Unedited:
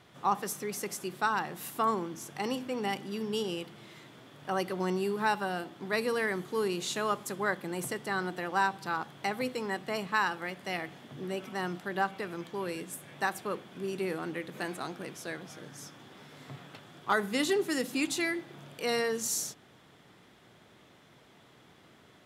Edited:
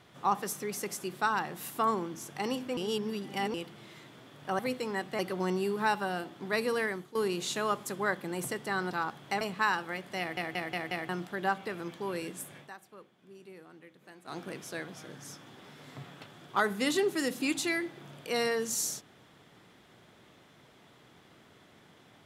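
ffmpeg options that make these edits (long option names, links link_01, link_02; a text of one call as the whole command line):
ffmpeg -i in.wav -filter_complex "[0:a]asplit=15[link_01][link_02][link_03][link_04][link_05][link_06][link_07][link_08][link_09][link_10][link_11][link_12][link_13][link_14][link_15];[link_01]atrim=end=2.772[link_16];[link_02]atrim=start=2.768:end=3.542,asetpts=PTS-STARTPTS,areverse[link_17];[link_03]atrim=start=3.538:end=4.592[link_18];[link_04]atrim=start=9.338:end=9.942[link_19];[link_05]atrim=start=4.588:end=6.55,asetpts=PTS-STARTPTS,afade=type=out:start_time=1.612:duration=0.35:silence=0.16788[link_20];[link_06]atrim=start=6.55:end=8.312,asetpts=PTS-STARTPTS,afade=type=in:duration=0.004:curve=hsin:silence=0.16788[link_21];[link_07]atrim=start=8.838:end=9.342[link_22];[link_08]atrim=start=9.938:end=10.902[link_23];[link_09]atrim=start=10.718:end=10.902[link_24];[link_10]atrim=start=10.718:end=10.902[link_25];[link_11]atrim=start=10.718:end=10.902[link_26];[link_12]atrim=start=10.718:end=10.902[link_27];[link_13]atrim=start=11.618:end=13.23,asetpts=PTS-STARTPTS,afade=type=out:start_time=1.482:duration=0.13:silence=0.141254[link_28];[link_14]atrim=start=13.23:end=14.77,asetpts=PTS-STARTPTS,volume=-17dB[link_29];[link_15]atrim=start=14.77,asetpts=PTS-STARTPTS,afade=type=in:duration=0.13:silence=0.141254[link_30];[link_16][link_17]acrossfade=duration=0.004:curve1=hsin:curve2=hsin[link_31];[link_31][link_18]acrossfade=duration=0.004:curve1=hsin:curve2=hsin[link_32];[link_32][link_19]acrossfade=duration=0.004:curve1=hsin:curve2=hsin[link_33];[link_20][link_21]concat=n=2:v=0:a=1[link_34];[link_33][link_34]acrossfade=duration=0.004:curve1=hsin:curve2=hsin[link_35];[link_35][link_22]acrossfade=duration=0.004:curve1=hsin:curve2=hsin[link_36];[link_36][link_23]acrossfade=duration=0.004:curve1=hsin:curve2=hsin[link_37];[link_37][link_24]acrossfade=duration=0.004:curve1=hsin:curve2=hsin[link_38];[link_38][link_25]acrossfade=duration=0.004:curve1=hsin:curve2=hsin[link_39];[link_39][link_26]acrossfade=duration=0.004:curve1=hsin:curve2=hsin[link_40];[link_40][link_27]acrossfade=duration=0.004:curve1=hsin:curve2=hsin[link_41];[link_28][link_29][link_30]concat=n=3:v=0:a=1[link_42];[link_41][link_42]acrossfade=duration=0.004:curve1=hsin:curve2=hsin" out.wav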